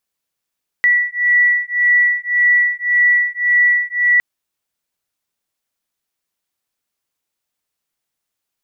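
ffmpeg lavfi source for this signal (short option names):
-f lavfi -i "aevalsrc='0.188*(sin(2*PI*1950*t)+sin(2*PI*1951.8*t))':d=3.36:s=44100"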